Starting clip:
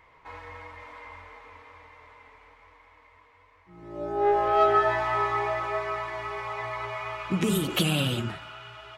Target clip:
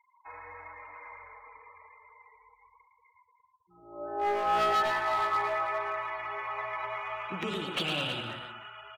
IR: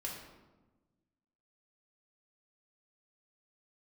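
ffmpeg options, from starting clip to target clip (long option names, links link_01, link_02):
-filter_complex "[0:a]afftfilt=real='re*gte(hypot(re,im),0.00708)':imag='im*gte(hypot(re,im),0.00708)':win_size=1024:overlap=0.75,acrossover=split=470 4900:gain=0.224 1 0.0794[link_01][link_02][link_03];[link_01][link_02][link_03]amix=inputs=3:normalize=0,adynamicsmooth=sensitivity=7.5:basefreq=7400,asoftclip=type=hard:threshold=-23dB,asplit=2[link_04][link_05];[link_05]aecho=0:1:112|319:0.501|0.251[link_06];[link_04][link_06]amix=inputs=2:normalize=0,volume=-2dB"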